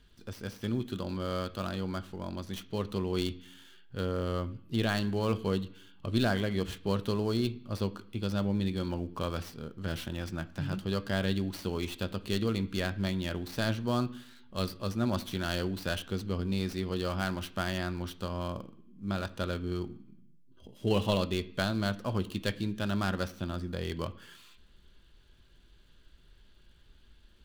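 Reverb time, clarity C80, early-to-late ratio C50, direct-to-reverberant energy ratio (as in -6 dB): 0.65 s, 20.5 dB, 17.5 dB, 10.0 dB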